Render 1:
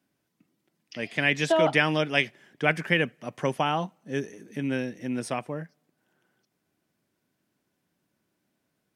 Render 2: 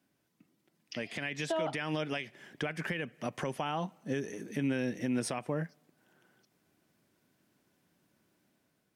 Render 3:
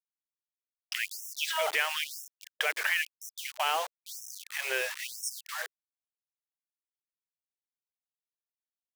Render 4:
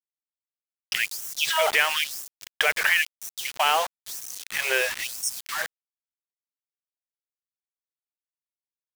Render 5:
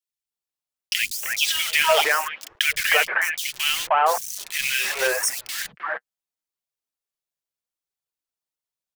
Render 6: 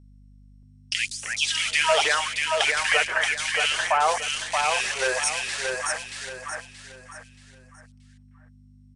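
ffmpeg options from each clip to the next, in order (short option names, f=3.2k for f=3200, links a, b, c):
-af "acompressor=threshold=-29dB:ratio=6,alimiter=level_in=3dB:limit=-24dB:level=0:latency=1:release=137,volume=-3dB,dynaudnorm=f=700:g=3:m=4dB"
-af "equalizer=f=2.5k:t=o:w=2.9:g=11,acrusher=bits=5:mix=0:aa=0.000001,afftfilt=real='re*gte(b*sr/1024,340*pow(5400/340,0.5+0.5*sin(2*PI*1*pts/sr)))':imag='im*gte(b*sr/1024,340*pow(5400/340,0.5+0.5*sin(2*PI*1*pts/sr)))':win_size=1024:overlap=0.75"
-af "aeval=exprs='val(0)*gte(abs(val(0)),0.00562)':c=same,volume=7.5dB"
-filter_complex "[0:a]acrossover=split=230|1900[a][b][c];[a]adelay=80[d];[b]adelay=310[e];[d][e][c]amix=inputs=3:normalize=0,flanger=delay=1.1:depth=6.2:regen=-32:speed=0.75:shape=triangular,volume=8.5dB"
-af "aeval=exprs='val(0)+0.00447*(sin(2*PI*50*n/s)+sin(2*PI*2*50*n/s)/2+sin(2*PI*3*50*n/s)/3+sin(2*PI*4*50*n/s)/4+sin(2*PI*5*50*n/s)/5)':c=same,aecho=1:1:628|1256|1884|2512:0.631|0.215|0.0729|0.0248,volume=-2.5dB" -ar 22050 -c:a mp2 -b:a 128k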